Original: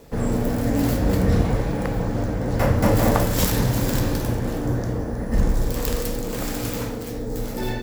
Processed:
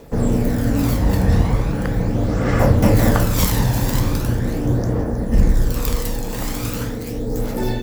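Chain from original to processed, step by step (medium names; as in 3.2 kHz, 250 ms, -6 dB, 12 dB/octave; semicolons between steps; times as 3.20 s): spectral replace 2.20–2.58 s, 1.1–8.6 kHz both; phaser 0.4 Hz, delay 1.2 ms, feedback 38%; trim +1.5 dB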